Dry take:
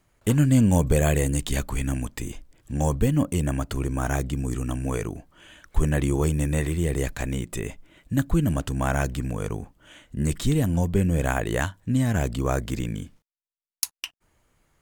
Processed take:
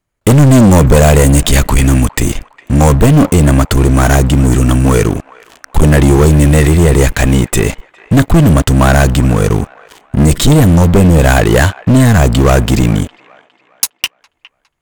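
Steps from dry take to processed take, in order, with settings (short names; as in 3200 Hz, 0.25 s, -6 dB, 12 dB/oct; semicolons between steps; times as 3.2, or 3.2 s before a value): sample leveller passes 5; band-limited delay 0.409 s, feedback 38%, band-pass 1400 Hz, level -19 dB; gain +2.5 dB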